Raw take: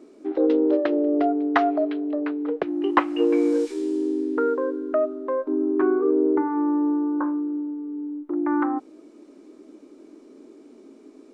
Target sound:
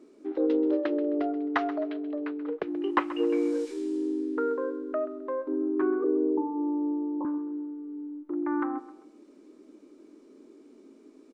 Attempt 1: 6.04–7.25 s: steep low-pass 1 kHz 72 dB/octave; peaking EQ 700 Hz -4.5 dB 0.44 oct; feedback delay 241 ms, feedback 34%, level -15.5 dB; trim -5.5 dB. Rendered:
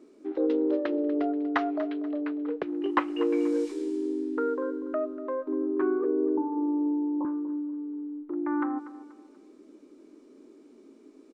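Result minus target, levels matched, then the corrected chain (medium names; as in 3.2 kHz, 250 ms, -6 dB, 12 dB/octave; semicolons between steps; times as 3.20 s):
echo 110 ms late
6.04–7.25 s: steep low-pass 1 kHz 72 dB/octave; peaking EQ 700 Hz -4.5 dB 0.44 oct; feedback delay 131 ms, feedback 34%, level -15.5 dB; trim -5.5 dB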